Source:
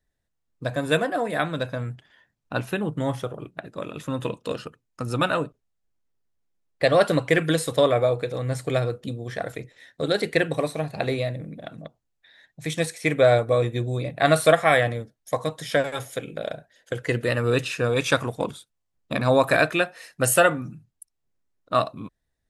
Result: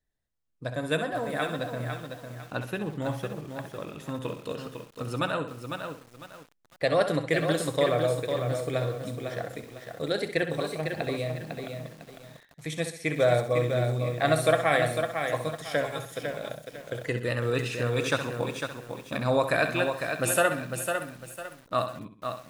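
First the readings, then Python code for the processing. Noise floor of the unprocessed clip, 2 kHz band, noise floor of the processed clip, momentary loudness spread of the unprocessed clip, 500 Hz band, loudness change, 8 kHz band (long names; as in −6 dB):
−78 dBFS, −4.5 dB, −58 dBFS, 16 LU, −4.5 dB, −5.0 dB, −4.5 dB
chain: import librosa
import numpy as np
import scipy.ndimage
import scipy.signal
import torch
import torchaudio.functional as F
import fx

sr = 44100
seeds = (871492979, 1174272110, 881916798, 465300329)

y = fx.echo_feedback(x, sr, ms=65, feedback_pct=40, wet_db=-10.0)
y = fx.echo_crushed(y, sr, ms=502, feedback_pct=35, bits=7, wet_db=-6)
y = F.gain(torch.from_numpy(y), -6.0).numpy()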